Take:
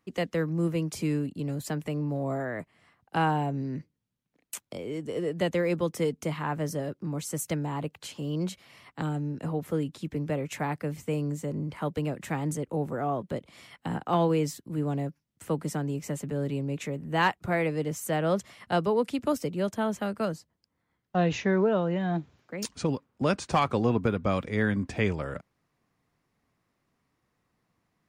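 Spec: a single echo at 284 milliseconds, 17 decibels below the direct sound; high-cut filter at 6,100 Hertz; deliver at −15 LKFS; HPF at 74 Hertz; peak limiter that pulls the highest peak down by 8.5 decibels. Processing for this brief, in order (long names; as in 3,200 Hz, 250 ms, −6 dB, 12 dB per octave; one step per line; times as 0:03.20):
high-pass filter 74 Hz
low-pass filter 6,100 Hz
brickwall limiter −20.5 dBFS
single-tap delay 284 ms −17 dB
level +17 dB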